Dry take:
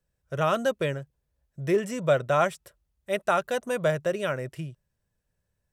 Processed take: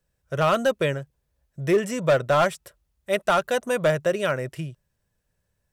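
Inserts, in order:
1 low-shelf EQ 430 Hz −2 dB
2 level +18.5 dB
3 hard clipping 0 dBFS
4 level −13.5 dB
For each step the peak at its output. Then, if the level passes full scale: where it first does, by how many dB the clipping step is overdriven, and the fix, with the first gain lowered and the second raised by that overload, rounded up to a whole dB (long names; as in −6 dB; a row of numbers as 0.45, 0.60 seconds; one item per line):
−11.0, +7.5, 0.0, −13.5 dBFS
step 2, 7.5 dB
step 2 +10.5 dB, step 4 −5.5 dB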